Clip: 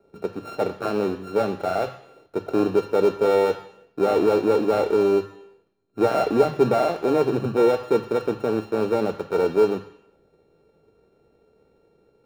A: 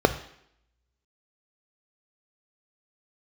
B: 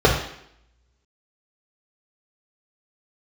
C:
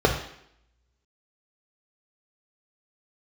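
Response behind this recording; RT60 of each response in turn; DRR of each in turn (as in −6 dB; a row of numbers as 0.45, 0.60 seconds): A; 0.70, 0.70, 0.70 seconds; 9.0, −3.5, 0.5 decibels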